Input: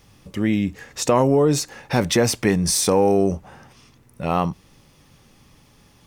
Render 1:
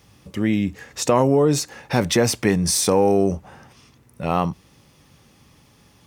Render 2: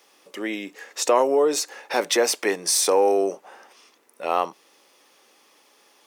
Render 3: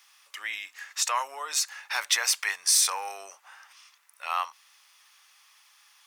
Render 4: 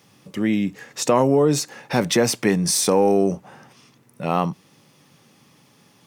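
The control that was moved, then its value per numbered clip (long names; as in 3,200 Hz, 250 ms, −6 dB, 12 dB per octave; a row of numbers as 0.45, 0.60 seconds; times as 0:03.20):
high-pass filter, corner frequency: 46, 370, 1,100, 130 Hertz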